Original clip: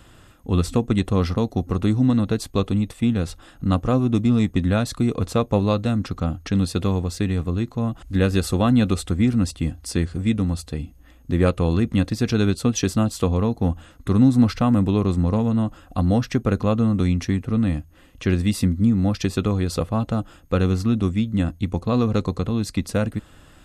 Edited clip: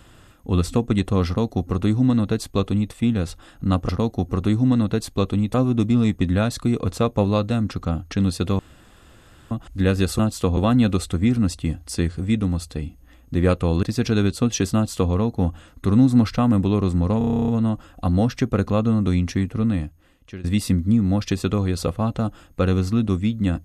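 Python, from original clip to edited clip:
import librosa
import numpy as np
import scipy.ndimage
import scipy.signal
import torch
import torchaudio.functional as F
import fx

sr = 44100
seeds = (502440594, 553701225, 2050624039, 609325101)

y = fx.edit(x, sr, fx.duplicate(start_s=1.27, length_s=1.65, to_s=3.89),
    fx.room_tone_fill(start_s=6.94, length_s=0.92),
    fx.cut(start_s=11.8, length_s=0.26),
    fx.duplicate(start_s=12.98, length_s=0.38, to_s=8.54),
    fx.stutter(start_s=15.41, slice_s=0.03, count=11),
    fx.fade_out_to(start_s=17.55, length_s=0.82, floor_db=-20.0), tone=tone)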